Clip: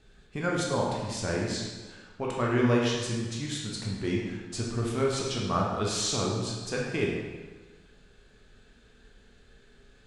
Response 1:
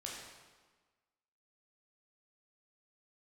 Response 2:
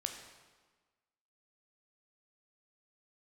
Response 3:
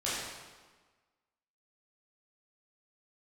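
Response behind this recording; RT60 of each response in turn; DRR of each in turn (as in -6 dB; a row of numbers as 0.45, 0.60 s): 1; 1.4, 1.4, 1.4 s; -3.5, 4.0, -10.0 dB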